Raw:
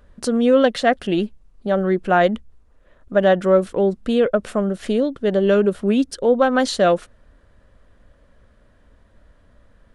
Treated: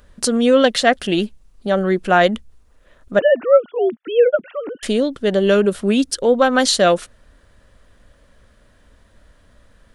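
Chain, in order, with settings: 3.19–4.83 sine-wave speech; high shelf 2500 Hz +10.5 dB; gain +1 dB

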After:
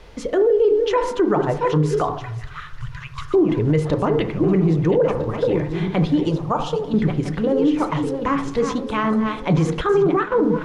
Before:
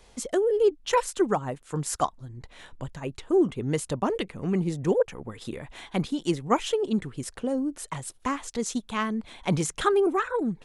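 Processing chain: regenerating reverse delay 0.653 s, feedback 46%, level -9 dB; 2.1–3.34 inverse Chebyshev band-stop 200–760 Hz, stop band 40 dB; 6.29–6.94 fixed phaser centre 860 Hz, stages 4; FDN reverb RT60 0.54 s, low-frequency decay 1.25×, high-frequency decay 0.3×, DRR 7.5 dB; in parallel at -5 dB: requantised 8-bit, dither triangular; on the sum: thirty-one-band EQ 250 Hz -9 dB, 800 Hz -4 dB, 8000 Hz -6 dB; on a send: darkening echo 73 ms, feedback 62%, level -18 dB; on the sum: limiter -17 dBFS, peak gain reduction 11 dB; tape spacing loss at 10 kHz 23 dB; 9.81–10.32 gate -28 dBFS, range -8 dB; gain +8.5 dB

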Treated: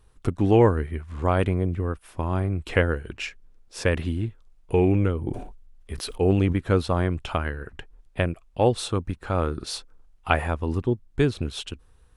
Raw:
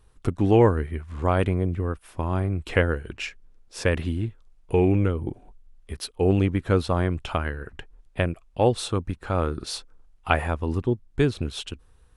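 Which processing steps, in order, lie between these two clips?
5.19–6.53 sustainer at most 63 dB/s

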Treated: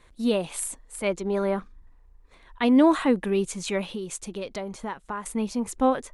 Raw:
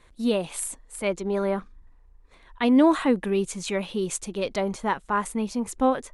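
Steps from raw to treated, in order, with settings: 3.86–5.26 compressor 4:1, threshold -31 dBFS, peak gain reduction 9.5 dB

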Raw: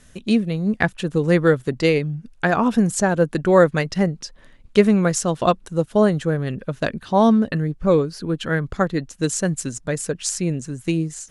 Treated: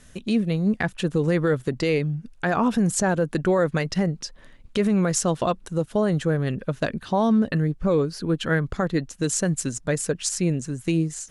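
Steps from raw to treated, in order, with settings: limiter -13 dBFS, peak gain reduction 11 dB

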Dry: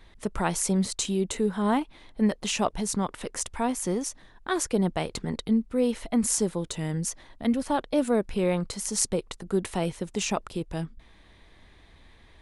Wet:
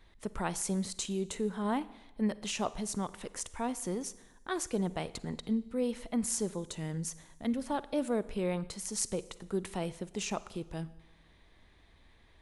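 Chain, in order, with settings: Schroeder reverb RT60 0.98 s, DRR 17 dB; gain -7.5 dB

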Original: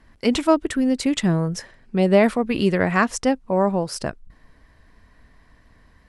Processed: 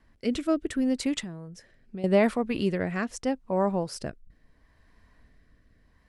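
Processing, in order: 1.2–2.04 compressor 3:1, threshold -32 dBFS, peak gain reduction 13.5 dB; rotary speaker horn 0.75 Hz; gain -5.5 dB

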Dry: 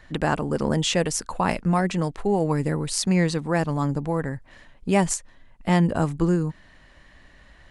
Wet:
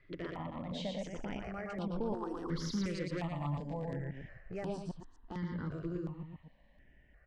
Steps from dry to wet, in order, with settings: reverse delay 0.132 s, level -7 dB; Doppler pass-by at 3.09, 20 m/s, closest 7.6 m; low-pass opened by the level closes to 2400 Hz, open at -24 dBFS; compressor 4:1, threshold -43 dBFS, peak gain reduction 23 dB; wavefolder -35 dBFS; on a send: echo 0.124 s -4 dB; on the sum: varispeed +6%; air absorption 110 m; step phaser 2.8 Hz 220–6800 Hz; gain +8 dB

